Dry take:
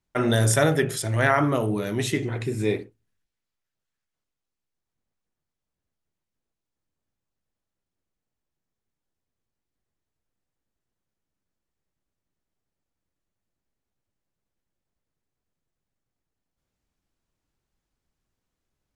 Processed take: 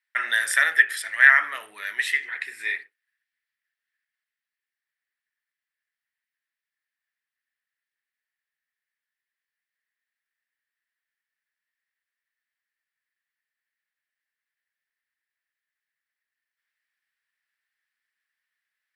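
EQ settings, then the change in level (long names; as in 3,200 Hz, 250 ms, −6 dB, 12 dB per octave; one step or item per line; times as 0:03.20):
high-pass with resonance 1,800 Hz, resonance Q 7.2
parametric band 6,600 Hz −11 dB 0.31 octaves
−1.5 dB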